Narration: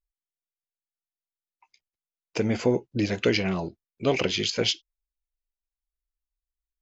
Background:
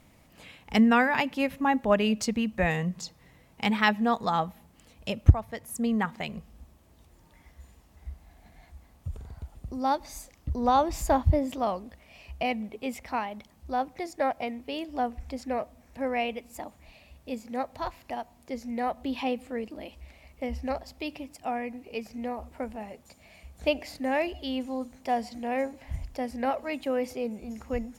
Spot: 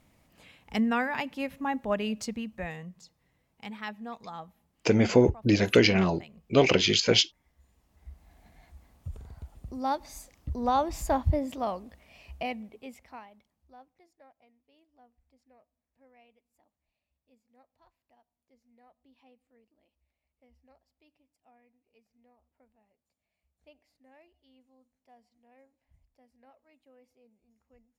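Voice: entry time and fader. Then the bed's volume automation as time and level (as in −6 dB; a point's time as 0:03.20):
2.50 s, +3.0 dB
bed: 0:02.26 −6 dB
0:02.98 −15 dB
0:07.49 −15 dB
0:08.34 −3 dB
0:12.33 −3 dB
0:14.31 −32 dB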